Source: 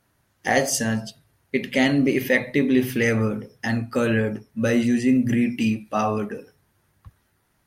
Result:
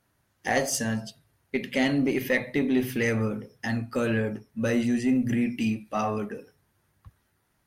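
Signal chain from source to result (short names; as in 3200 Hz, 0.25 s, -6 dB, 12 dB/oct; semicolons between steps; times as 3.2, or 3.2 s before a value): one diode to ground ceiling -7 dBFS; gain -4 dB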